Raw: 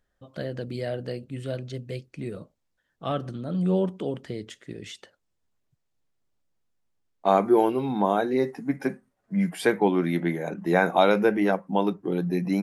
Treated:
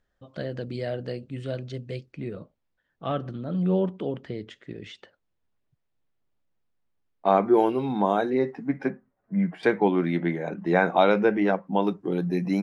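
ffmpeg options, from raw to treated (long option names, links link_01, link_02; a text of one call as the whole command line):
ffmpeg -i in.wav -af "asetnsamples=nb_out_samples=441:pad=0,asendcmd='2.12 lowpass f 3500;7.54 lowpass f 7300;8.3 lowpass f 3200;8.9 lowpass f 1800;9.63 lowpass f 4100;11.83 lowpass f 8000',lowpass=6000" out.wav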